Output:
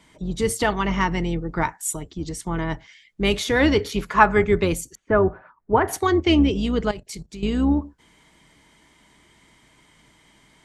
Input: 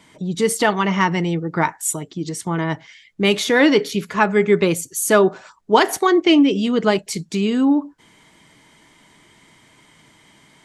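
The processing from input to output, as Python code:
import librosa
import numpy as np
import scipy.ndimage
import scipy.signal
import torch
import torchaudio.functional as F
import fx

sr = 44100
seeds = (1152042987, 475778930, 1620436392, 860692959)

y = fx.octave_divider(x, sr, octaves=2, level_db=-4.0)
y = fx.peak_eq(y, sr, hz=1100.0, db=9.5, octaves=1.5, at=(3.85, 4.44))
y = fx.lowpass(y, sr, hz=1800.0, slope=24, at=(4.95, 5.88))
y = fx.level_steps(y, sr, step_db=15, at=(6.86, 7.43))
y = F.gain(torch.from_numpy(y), -4.5).numpy()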